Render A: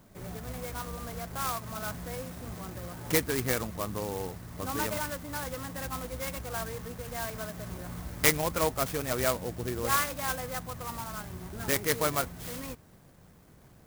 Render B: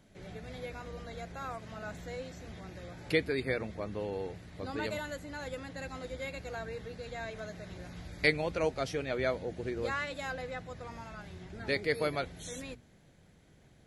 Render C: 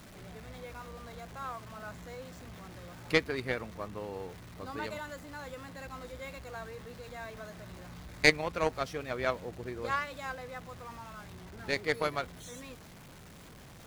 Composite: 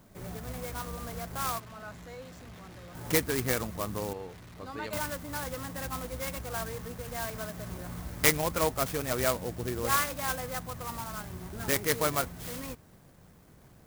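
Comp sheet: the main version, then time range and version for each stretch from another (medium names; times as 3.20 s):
A
1.60–2.95 s: from C
4.13–4.93 s: from C
not used: B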